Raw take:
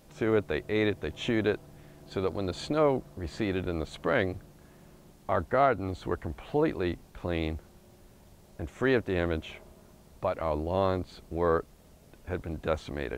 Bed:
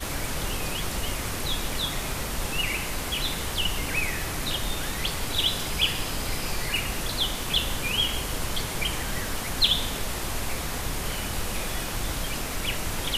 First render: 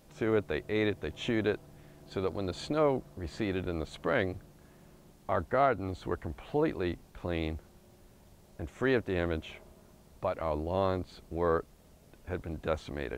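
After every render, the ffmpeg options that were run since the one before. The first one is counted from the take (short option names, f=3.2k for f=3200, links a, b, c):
-af "volume=-2.5dB"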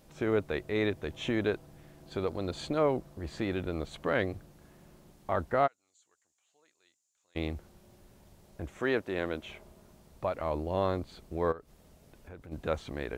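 -filter_complex "[0:a]asplit=3[a][b][c];[a]afade=t=out:st=5.66:d=0.02[d];[b]bandpass=f=7k:t=q:w=7.5,afade=t=in:st=5.66:d=0.02,afade=t=out:st=7.35:d=0.02[e];[c]afade=t=in:st=7.35:d=0.02[f];[d][e][f]amix=inputs=3:normalize=0,asettb=1/sr,asplit=3[g][h][i];[g]atrim=end=8.794[j];[h]atrim=start=8.79:end=9.43,asetpts=PTS-STARTPTS,afade=t=in:d=0.004:c=qsin,afade=t=out:st=0.636:d=0.004:c=qsin,highpass=f=250:p=1[k];[i]atrim=start=9.426[l];[j][k]acrossfade=d=0.004:c1=hsin:c2=qsin[m];[m][l]acrossfade=d=0.004:c1=qsin:c2=hsin,asplit=3[n][o][p];[n]afade=t=out:st=11.51:d=0.02[q];[o]acompressor=threshold=-49dB:ratio=2.5:attack=3.2:release=140:knee=1:detection=peak,afade=t=in:st=11.51:d=0.02,afade=t=out:st=12.51:d=0.02[r];[p]afade=t=in:st=12.51:d=0.02[s];[q][r][s]amix=inputs=3:normalize=0"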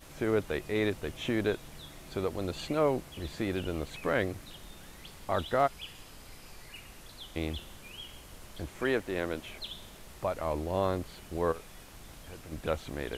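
-filter_complex "[1:a]volume=-20.5dB[a];[0:a][a]amix=inputs=2:normalize=0"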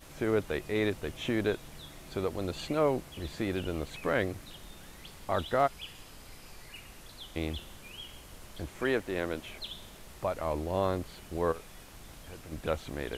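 -af anull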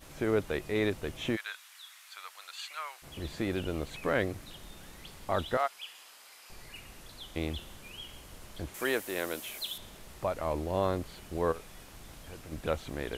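-filter_complex "[0:a]asplit=3[a][b][c];[a]afade=t=out:st=1.35:d=0.02[d];[b]highpass=f=1.2k:w=0.5412,highpass=f=1.2k:w=1.3066,afade=t=in:st=1.35:d=0.02,afade=t=out:st=3.02:d=0.02[e];[c]afade=t=in:st=3.02:d=0.02[f];[d][e][f]amix=inputs=3:normalize=0,asettb=1/sr,asplit=3[g][h][i];[g]atrim=end=5.574[j];[h]atrim=start=5.57:end=6.5,asetpts=PTS-STARTPTS,afade=t=in:d=0.004:c=qsin,afade=t=out:st=0.926:d=0.004:c=qsin,highpass=850[k];[i]atrim=start=6.496[l];[j][k]acrossfade=d=0.004:c1=hsin:c2=qsin[m];[m][l]acrossfade=d=0.004:c1=qsin:c2=hsin,asettb=1/sr,asplit=3[n][o][p];[n]atrim=end=8.744[q];[o]atrim=start=8.74:end=9.78,asetpts=PTS-STARTPTS,afade=t=in:d=0.004:c=qsin,afade=t=out:st=1.036:d=0.004:c=qsin,aemphasis=mode=production:type=bsi[r];[p]atrim=start=9.776[s];[q][r]acrossfade=d=0.004:c1=hsin:c2=qsin[t];[t][s]acrossfade=d=0.004:c1=qsin:c2=hsin"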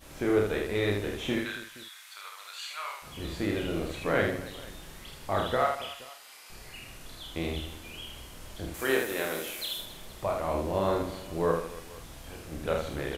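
-filter_complex "[0:a]asplit=2[a][b];[b]adelay=48,volume=-8dB[c];[a][c]amix=inputs=2:normalize=0,aecho=1:1:30|78|154.8|277.7|474.3:0.631|0.398|0.251|0.158|0.1"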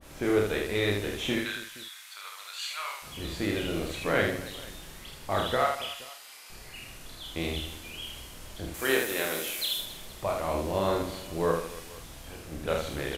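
-af "adynamicequalizer=threshold=0.00501:dfrequency=2000:dqfactor=0.7:tfrequency=2000:tqfactor=0.7:attack=5:release=100:ratio=0.375:range=2.5:mode=boostabove:tftype=highshelf"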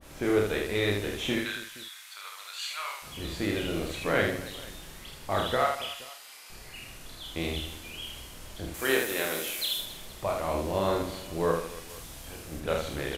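-filter_complex "[0:a]asettb=1/sr,asplit=3[a][b][c];[a]atrim=end=11.894[d];[b]atrim=start=11.89:end=12.6,asetpts=PTS-STARTPTS,afade=t=in:d=0.004:c=qsin,afade=t=out:st=0.706:d=0.004:c=qsin,highshelf=f=5.3k:g=5.5[e];[c]atrim=start=12.596[f];[d][e]acrossfade=d=0.004:c1=hsin:c2=qsin[g];[g][f]acrossfade=d=0.004:c1=qsin:c2=hsin"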